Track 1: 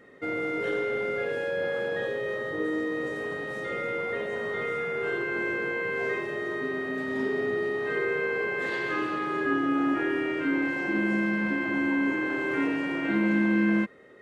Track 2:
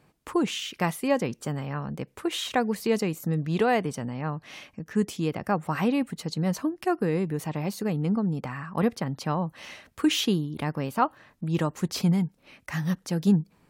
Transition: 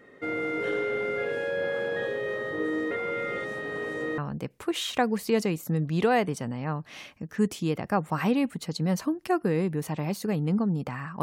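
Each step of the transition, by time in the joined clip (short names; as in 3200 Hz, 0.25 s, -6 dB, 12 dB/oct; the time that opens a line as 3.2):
track 1
2.91–4.18 reverse
4.18 switch to track 2 from 1.75 s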